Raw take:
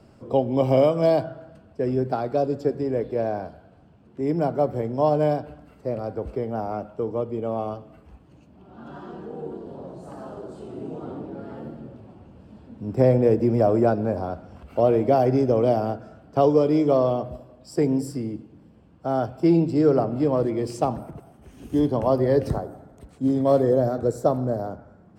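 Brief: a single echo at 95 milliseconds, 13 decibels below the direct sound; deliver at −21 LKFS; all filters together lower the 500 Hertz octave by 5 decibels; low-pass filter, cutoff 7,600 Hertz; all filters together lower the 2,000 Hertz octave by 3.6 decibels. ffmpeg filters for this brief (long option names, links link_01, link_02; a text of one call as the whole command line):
ffmpeg -i in.wav -af "lowpass=7600,equalizer=frequency=500:width_type=o:gain=-6,equalizer=frequency=2000:width_type=o:gain=-4.5,aecho=1:1:95:0.224,volume=5dB" out.wav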